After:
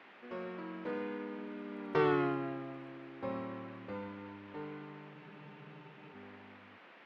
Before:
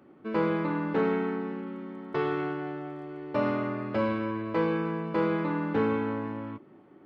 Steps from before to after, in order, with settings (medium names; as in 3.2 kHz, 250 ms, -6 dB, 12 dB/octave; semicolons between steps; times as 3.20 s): Doppler pass-by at 2.08 s, 34 m/s, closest 10 m; band noise 190–2500 Hz -58 dBFS; spectral freeze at 5.15 s, 1.00 s